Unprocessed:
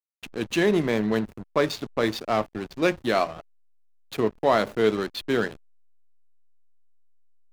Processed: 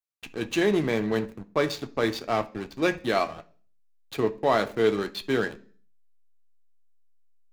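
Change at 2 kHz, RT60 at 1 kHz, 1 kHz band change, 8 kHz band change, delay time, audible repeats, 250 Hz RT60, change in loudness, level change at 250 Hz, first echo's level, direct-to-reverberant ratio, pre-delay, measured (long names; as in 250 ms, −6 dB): −1.0 dB, 0.40 s, −1.5 dB, −1.5 dB, no echo audible, no echo audible, 0.60 s, −1.5 dB, −2.0 dB, no echo audible, 7.0 dB, 3 ms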